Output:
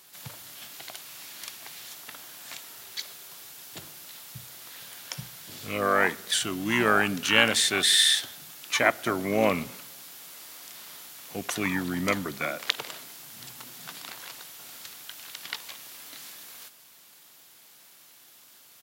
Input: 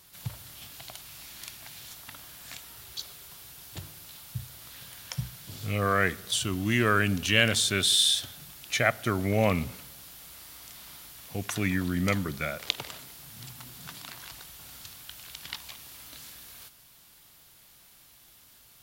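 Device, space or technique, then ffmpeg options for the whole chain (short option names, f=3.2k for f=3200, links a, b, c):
octave pedal: -filter_complex "[0:a]asplit=2[a][b];[b]asetrate=22050,aresample=44100,atempo=2,volume=-9dB[c];[a][c]amix=inputs=2:normalize=0,highpass=230,volume=2dB"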